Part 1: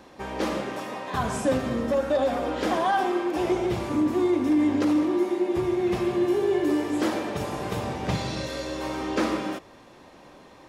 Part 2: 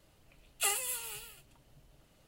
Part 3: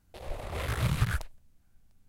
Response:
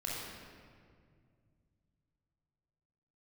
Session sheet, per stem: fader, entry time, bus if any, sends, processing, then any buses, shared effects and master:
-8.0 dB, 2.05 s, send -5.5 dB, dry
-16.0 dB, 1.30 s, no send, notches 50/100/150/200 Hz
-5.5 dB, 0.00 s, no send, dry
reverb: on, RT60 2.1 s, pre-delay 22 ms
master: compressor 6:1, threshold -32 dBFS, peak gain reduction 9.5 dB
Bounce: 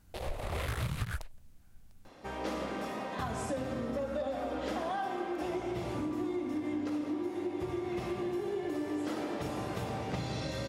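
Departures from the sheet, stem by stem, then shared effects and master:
stem 2: muted; stem 3 -5.5 dB -> +5.5 dB

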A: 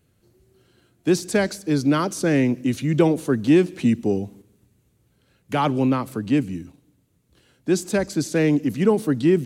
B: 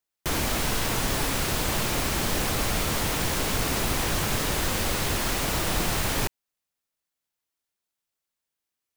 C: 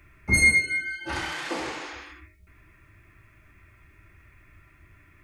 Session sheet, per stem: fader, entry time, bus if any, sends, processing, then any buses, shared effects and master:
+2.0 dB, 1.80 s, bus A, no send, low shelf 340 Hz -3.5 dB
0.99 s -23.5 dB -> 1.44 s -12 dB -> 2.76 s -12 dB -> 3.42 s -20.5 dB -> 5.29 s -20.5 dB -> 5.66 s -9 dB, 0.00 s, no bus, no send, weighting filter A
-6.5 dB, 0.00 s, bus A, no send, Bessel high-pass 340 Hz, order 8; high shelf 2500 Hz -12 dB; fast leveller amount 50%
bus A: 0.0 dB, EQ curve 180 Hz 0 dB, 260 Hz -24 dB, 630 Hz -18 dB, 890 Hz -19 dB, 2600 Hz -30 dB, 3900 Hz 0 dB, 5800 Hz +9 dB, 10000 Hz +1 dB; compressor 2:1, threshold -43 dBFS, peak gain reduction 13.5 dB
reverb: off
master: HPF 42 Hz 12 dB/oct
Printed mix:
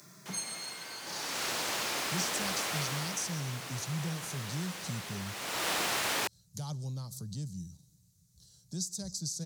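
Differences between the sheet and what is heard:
stem A: entry 1.80 s -> 1.05 s; stem B -23.5 dB -> -17.0 dB; stem C -6.5 dB -> +4.0 dB

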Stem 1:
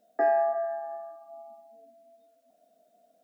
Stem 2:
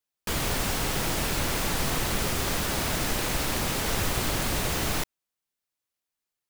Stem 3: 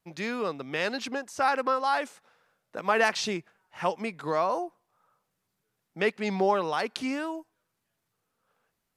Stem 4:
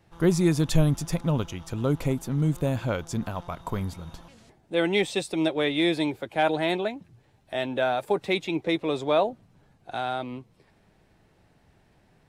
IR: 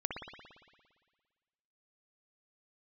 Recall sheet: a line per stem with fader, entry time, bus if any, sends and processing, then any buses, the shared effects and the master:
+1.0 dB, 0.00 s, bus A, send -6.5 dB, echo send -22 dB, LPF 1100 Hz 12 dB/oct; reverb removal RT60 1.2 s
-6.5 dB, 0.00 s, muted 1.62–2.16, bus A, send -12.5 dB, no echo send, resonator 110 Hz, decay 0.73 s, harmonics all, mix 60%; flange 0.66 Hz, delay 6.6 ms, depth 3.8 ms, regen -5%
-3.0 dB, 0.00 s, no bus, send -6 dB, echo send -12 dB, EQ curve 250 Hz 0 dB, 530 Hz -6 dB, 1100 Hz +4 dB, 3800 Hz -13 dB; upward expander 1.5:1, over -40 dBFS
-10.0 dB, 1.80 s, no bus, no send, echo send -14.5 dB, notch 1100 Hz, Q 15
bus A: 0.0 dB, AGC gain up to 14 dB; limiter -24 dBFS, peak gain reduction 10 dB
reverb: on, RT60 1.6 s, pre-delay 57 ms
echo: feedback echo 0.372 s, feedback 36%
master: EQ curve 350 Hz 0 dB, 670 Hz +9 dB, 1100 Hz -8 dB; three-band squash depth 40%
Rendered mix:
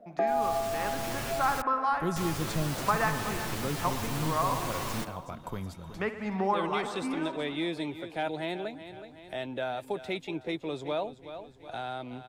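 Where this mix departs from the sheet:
stem 2 -6.5 dB -> -13.5 dB; master: missing EQ curve 350 Hz 0 dB, 670 Hz +9 dB, 1100 Hz -8 dB

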